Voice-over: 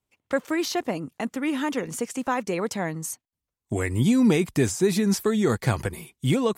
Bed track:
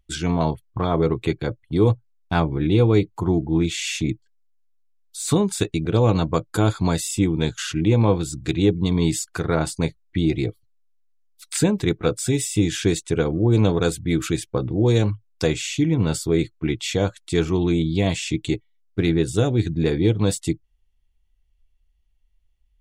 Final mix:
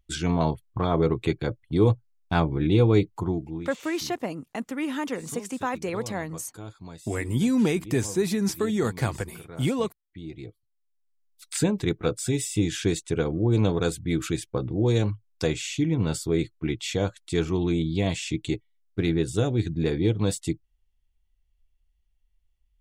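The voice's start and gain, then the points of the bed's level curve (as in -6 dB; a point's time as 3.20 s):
3.35 s, -3.0 dB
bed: 3.16 s -2.5 dB
3.82 s -21.5 dB
10.04 s -21.5 dB
11.32 s -4.5 dB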